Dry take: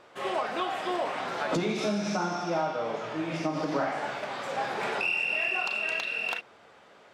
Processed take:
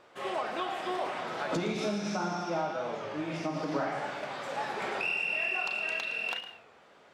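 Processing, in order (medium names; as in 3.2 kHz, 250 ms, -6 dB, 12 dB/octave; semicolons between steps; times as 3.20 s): reverberation RT60 0.90 s, pre-delay 114 ms, DRR 10.5 dB; warped record 33 1/3 rpm, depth 100 cents; trim -3.5 dB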